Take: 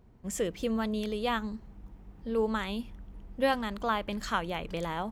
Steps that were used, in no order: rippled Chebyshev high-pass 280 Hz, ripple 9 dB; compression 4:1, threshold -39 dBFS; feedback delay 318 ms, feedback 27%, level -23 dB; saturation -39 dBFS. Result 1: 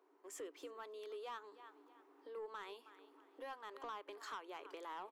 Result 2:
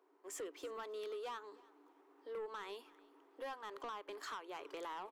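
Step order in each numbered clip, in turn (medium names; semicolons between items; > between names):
feedback delay > compression > rippled Chebyshev high-pass > saturation; rippled Chebyshev high-pass > compression > saturation > feedback delay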